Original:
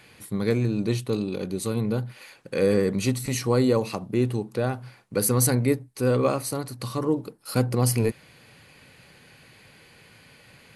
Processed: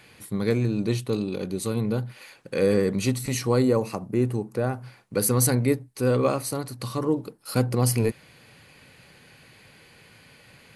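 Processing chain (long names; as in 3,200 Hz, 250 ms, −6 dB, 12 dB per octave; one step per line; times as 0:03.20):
0:03.62–0:04.84: parametric band 3,500 Hz −9.5 dB 0.84 octaves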